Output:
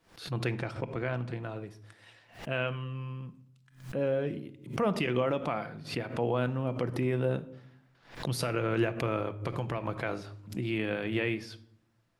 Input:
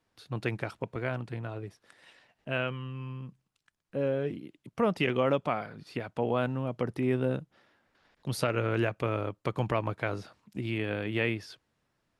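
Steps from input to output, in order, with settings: 0.47–1.40 s: low-pass 8.2 kHz 12 dB/octave; 9.41–9.88 s: compression 5:1, threshold -30 dBFS, peak gain reduction 7.5 dB; peak limiter -18.5 dBFS, peak gain reduction 6.5 dB; reverberation RT60 0.65 s, pre-delay 6 ms, DRR 10 dB; swell ahead of each attack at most 130 dB/s

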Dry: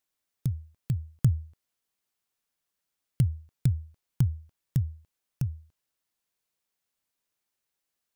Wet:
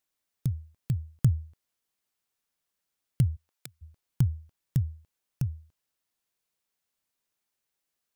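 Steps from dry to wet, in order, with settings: 3.35–3.81 s: high-pass 350 Hz -> 1 kHz 12 dB/octave

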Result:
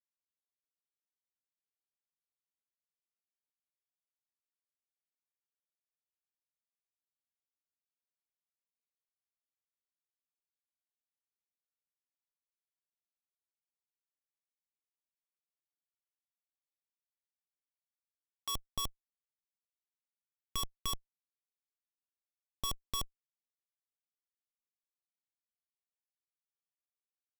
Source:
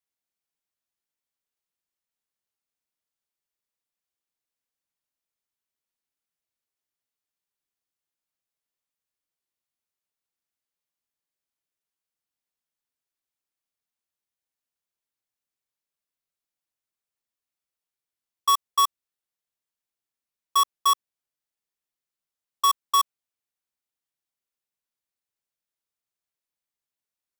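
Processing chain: Schmitt trigger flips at -31 dBFS; high-order bell 1.3 kHz -11.5 dB 1.1 oct; trim +6 dB

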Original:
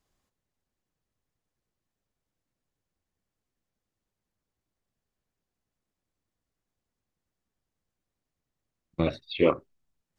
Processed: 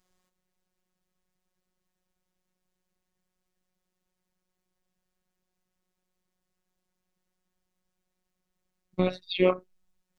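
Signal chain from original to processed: in parallel at -1 dB: compression, threshold -31 dBFS, peak gain reduction 14 dB; on the sum: robot voice 183 Hz

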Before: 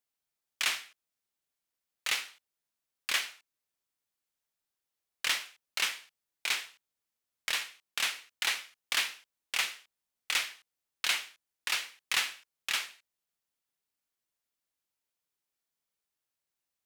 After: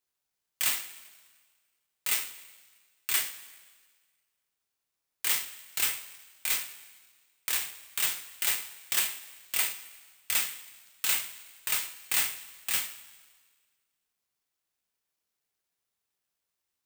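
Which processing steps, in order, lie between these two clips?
two-slope reverb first 0.23 s, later 1.6 s, from -18 dB, DRR 1.5 dB; careless resampling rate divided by 4×, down none, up zero stuff; trim -5.5 dB

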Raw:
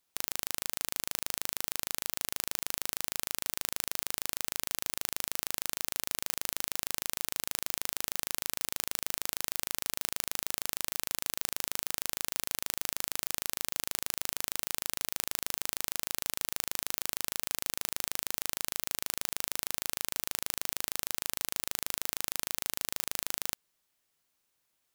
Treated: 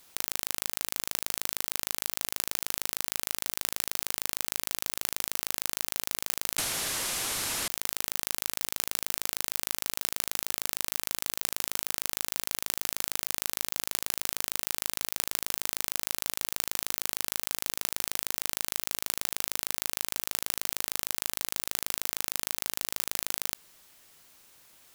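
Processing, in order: 6.58–7.68 s: one-bit delta coder 64 kbps, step -18 dBFS; transient shaper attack +8 dB, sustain 0 dB; level flattener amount 50%; trim -9 dB

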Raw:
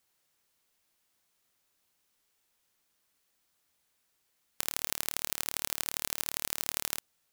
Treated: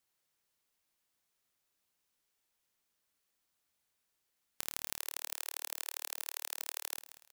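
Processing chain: 4.98–6.98 s: high-pass 470 Hz 24 dB/octave; feedback delay 186 ms, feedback 33%, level -13.5 dB; trim -6.5 dB

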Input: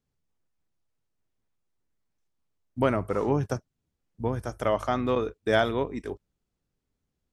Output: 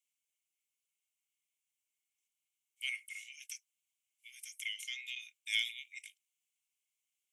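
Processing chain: rippled Chebyshev high-pass 2.1 kHz, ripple 6 dB; peaking EQ 4.6 kHz -10 dB 0.79 oct; trim +9 dB

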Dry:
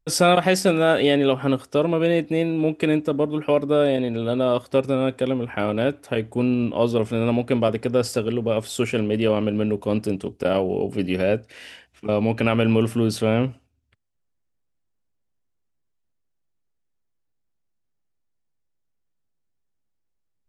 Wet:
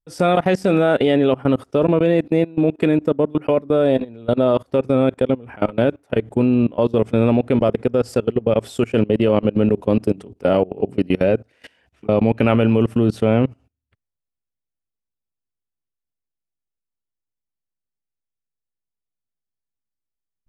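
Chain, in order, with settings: treble shelf 2.1 kHz -9.5 dB; level held to a coarse grid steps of 23 dB; trim +8 dB

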